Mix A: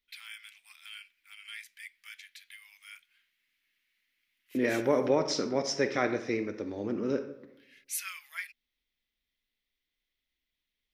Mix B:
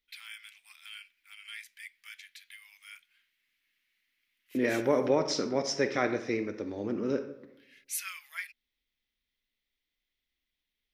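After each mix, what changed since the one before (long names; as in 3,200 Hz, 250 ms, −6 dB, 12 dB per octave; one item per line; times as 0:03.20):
nothing changed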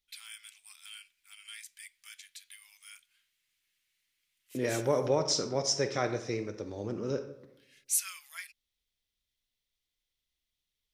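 master: add graphic EQ with 10 bands 125 Hz +7 dB, 250 Hz −8 dB, 2,000 Hz −7 dB, 8,000 Hz +10 dB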